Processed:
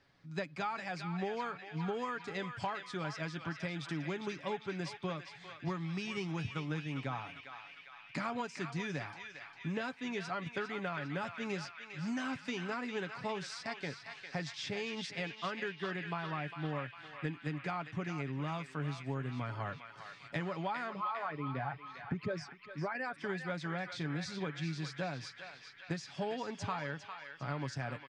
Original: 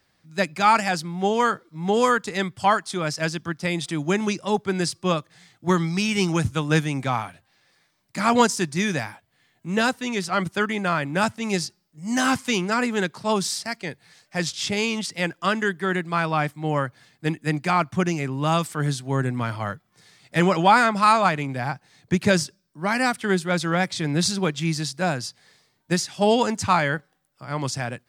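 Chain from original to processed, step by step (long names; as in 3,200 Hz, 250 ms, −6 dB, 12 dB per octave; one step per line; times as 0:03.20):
0:20.90–0:23.17: spectral envelope exaggerated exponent 2
comb filter 7.1 ms, depth 39%
downward compressor 8 to 1, threshold −33 dBFS, peak gain reduction 22 dB
high-frequency loss of the air 130 metres
feedback echo with a band-pass in the loop 403 ms, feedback 77%, band-pass 2,400 Hz, level −5 dB
level −2 dB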